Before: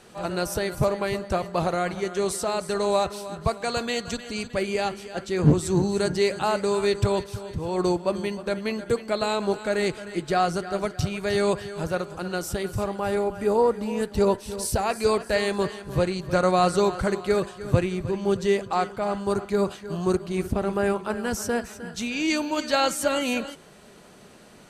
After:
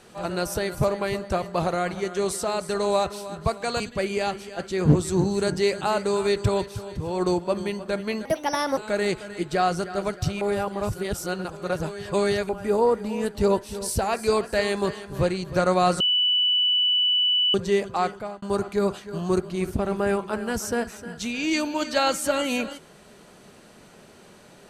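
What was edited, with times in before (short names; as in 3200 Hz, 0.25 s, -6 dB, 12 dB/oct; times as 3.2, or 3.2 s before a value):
3.8–4.38 cut
8.83–9.54 speed 136%
11.18–13.26 reverse
16.77–18.31 bleep 2970 Hz -18 dBFS
18.87–19.19 fade out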